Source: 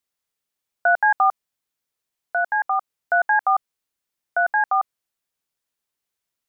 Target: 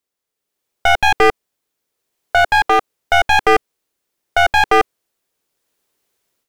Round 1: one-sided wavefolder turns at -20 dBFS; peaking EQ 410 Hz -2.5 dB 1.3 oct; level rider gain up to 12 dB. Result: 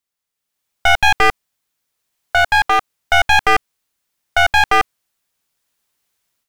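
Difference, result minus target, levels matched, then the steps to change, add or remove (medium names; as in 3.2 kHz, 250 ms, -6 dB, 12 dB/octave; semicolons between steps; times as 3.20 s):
500 Hz band -5.0 dB
change: peaking EQ 410 Hz +8 dB 1.3 oct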